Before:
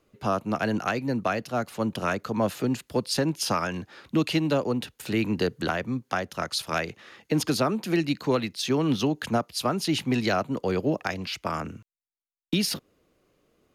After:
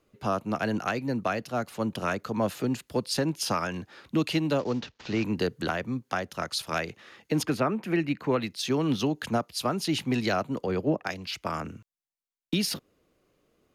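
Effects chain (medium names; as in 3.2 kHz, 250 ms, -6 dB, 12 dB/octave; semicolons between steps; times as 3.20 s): 4.59–5.24 s: CVSD coder 32 kbps; 7.45–8.41 s: resonant high shelf 3.1 kHz -9 dB, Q 1.5; 10.66–11.31 s: three bands expanded up and down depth 100%; trim -2 dB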